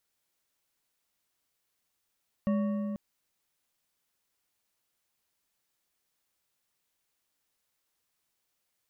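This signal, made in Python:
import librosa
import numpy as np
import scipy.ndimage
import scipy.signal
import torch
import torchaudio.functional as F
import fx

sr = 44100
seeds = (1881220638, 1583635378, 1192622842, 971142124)

y = fx.strike_metal(sr, length_s=0.49, level_db=-24.0, body='bar', hz=207.0, decay_s=3.5, tilt_db=8.5, modes=5)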